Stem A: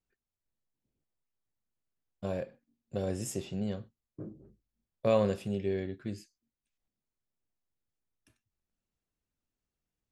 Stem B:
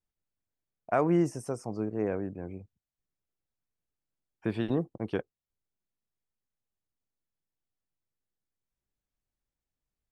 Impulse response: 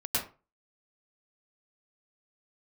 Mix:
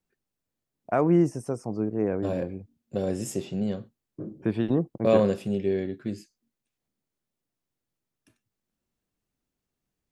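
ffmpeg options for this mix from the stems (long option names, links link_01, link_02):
-filter_complex "[0:a]highpass=frequency=160:poles=1,volume=2.5dB[link_01];[1:a]volume=-0.5dB[link_02];[link_01][link_02]amix=inputs=2:normalize=0,equalizer=frequency=210:width_type=o:width=2.9:gain=6"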